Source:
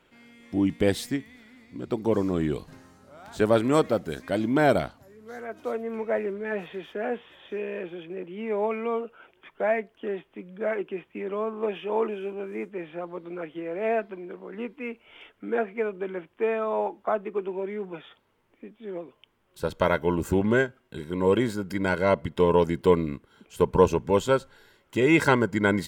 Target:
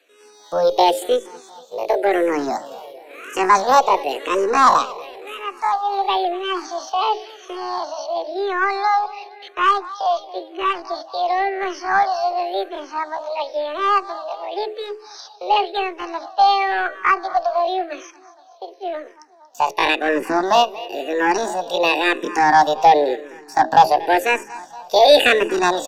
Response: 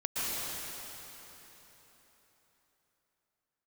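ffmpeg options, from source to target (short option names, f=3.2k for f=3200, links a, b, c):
-filter_complex "[0:a]highpass=f=44:p=1,aemphasis=mode=production:type=bsi,bandreject=f=60:t=h:w=6,bandreject=f=120:t=h:w=6,bandreject=f=180:t=h:w=6,bandreject=f=240:t=h:w=6,bandreject=f=300:t=h:w=6,bandreject=f=360:t=h:w=6,agate=range=-7dB:threshold=-53dB:ratio=16:detection=peak,equalizer=f=200:w=0.7:g=13,acrossover=split=190|540|5800[a][b][c][d];[d]acompressor=threshold=-53dB:ratio=12[e];[a][b][c][e]amix=inputs=4:normalize=0,asetrate=78577,aresample=44100,atempo=0.561231,asplit=2[f][g];[g]highpass=f=720:p=1,volume=16dB,asoftclip=type=tanh:threshold=-1.5dB[h];[f][h]amix=inputs=2:normalize=0,lowpass=f=5.7k:p=1,volume=-6dB,aecho=1:1:234|468|702|936|1170:0.112|0.0628|0.0352|0.0197|0.011,aeval=exprs='0.891*(cos(1*acos(clip(val(0)/0.891,-1,1)))-cos(1*PI/2))+0.0224*(cos(4*acos(clip(val(0)/0.891,-1,1)))-cos(4*PI/2))':c=same,aresample=32000,aresample=44100,asplit=2[i][j];[j]afreqshift=-0.95[k];[i][k]amix=inputs=2:normalize=1,volume=1dB"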